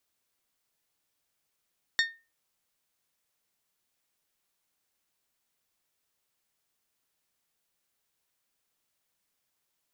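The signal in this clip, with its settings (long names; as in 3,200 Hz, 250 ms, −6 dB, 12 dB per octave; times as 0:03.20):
struck glass bell, lowest mode 1,830 Hz, decay 0.29 s, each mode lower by 3.5 dB, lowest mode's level −20 dB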